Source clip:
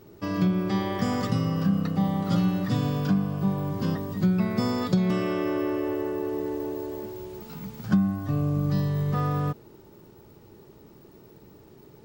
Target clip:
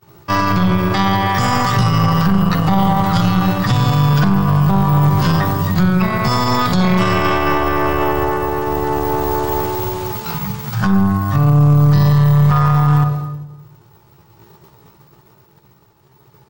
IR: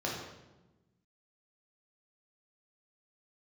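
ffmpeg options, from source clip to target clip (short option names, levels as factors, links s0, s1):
-filter_complex "[0:a]agate=range=0.0224:threshold=0.00891:ratio=3:detection=peak,aecho=1:1:105|210|315:0.0708|0.0269|0.0102,tremolo=f=0.56:d=0.48,atempo=0.73,lowshelf=f=200:g=-8.5,asplit=2[s0][s1];[1:a]atrim=start_sample=2205,adelay=59[s2];[s1][s2]afir=irnorm=-1:irlink=0,volume=0.112[s3];[s0][s3]amix=inputs=2:normalize=0,aeval=exprs='0.141*(cos(1*acos(clip(val(0)/0.141,-1,1)))-cos(1*PI/2))+0.0398*(cos(2*acos(clip(val(0)/0.141,-1,1)))-cos(2*PI/2))+0.00562*(cos(6*acos(clip(val(0)/0.141,-1,1)))-cos(6*PI/2))':c=same,equalizer=f=125:t=o:w=1:g=9,equalizer=f=250:t=o:w=1:g=-10,equalizer=f=500:t=o:w=1:g=-7,equalizer=f=1000:t=o:w=1:g=6,alimiter=level_in=18.8:limit=0.891:release=50:level=0:latency=1,volume=0.631"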